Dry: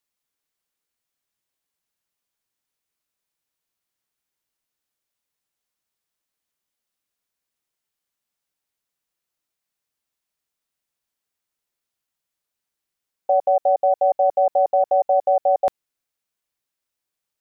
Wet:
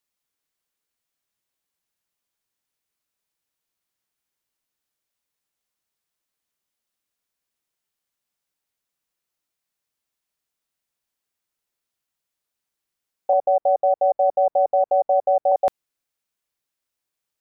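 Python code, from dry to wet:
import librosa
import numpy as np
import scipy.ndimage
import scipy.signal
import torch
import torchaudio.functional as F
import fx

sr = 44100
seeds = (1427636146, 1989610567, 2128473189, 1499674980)

y = fx.lowpass(x, sr, hz=1000.0, slope=12, at=(13.33, 15.52))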